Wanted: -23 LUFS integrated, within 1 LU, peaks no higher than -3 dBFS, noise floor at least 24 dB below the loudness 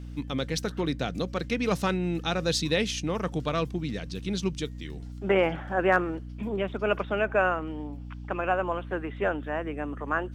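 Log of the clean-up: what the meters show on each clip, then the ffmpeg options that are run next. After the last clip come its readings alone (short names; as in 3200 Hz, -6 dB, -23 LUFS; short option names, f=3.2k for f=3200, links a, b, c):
hum 60 Hz; harmonics up to 300 Hz; hum level -37 dBFS; loudness -29.0 LUFS; peak -9.5 dBFS; loudness target -23.0 LUFS
-> -af "bandreject=f=60:t=h:w=4,bandreject=f=120:t=h:w=4,bandreject=f=180:t=h:w=4,bandreject=f=240:t=h:w=4,bandreject=f=300:t=h:w=4"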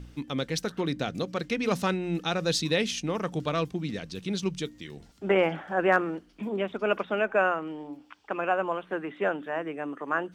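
hum none; loudness -29.0 LUFS; peak -10.0 dBFS; loudness target -23.0 LUFS
-> -af "volume=6dB"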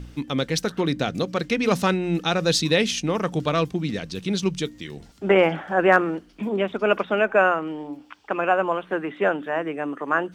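loudness -23.0 LUFS; peak -4.0 dBFS; noise floor -50 dBFS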